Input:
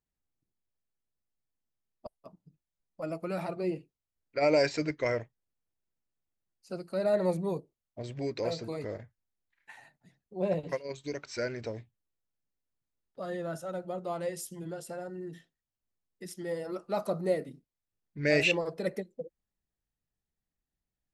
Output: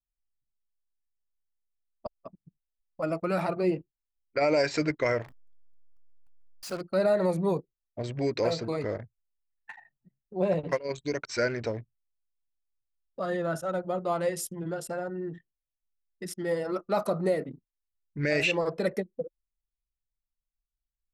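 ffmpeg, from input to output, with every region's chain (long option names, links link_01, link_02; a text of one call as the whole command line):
ffmpeg -i in.wav -filter_complex "[0:a]asettb=1/sr,asplit=3[link_01][link_02][link_03];[link_01]atrim=end=5.224[link_04];[link_02]atrim=start=5.22:end=6.81,asetpts=PTS-STARTPTS,afade=type=in:duration=0.004:curve=qsin,afade=type=out:start_time=1.586:duration=0.004:curve=qsin,aeval=exprs='val(0)+0.5*0.00841*sgn(val(0))':channel_layout=same,lowshelf=frequency=360:gain=-9[link_05];[link_03]atrim=start=6.806[link_06];[link_04][link_05]acrossfade=duration=0.004:curve1=hsin:curve2=qsin[link_07];[link_07][link_06]acrossfade=duration=0.004:curve1=qsin:curve2=hsin,anlmdn=0.00631,equalizer=frequency=1300:width_type=o:width=0.92:gain=4,alimiter=limit=-21.5dB:level=0:latency=1:release=133,volume=5.5dB" out.wav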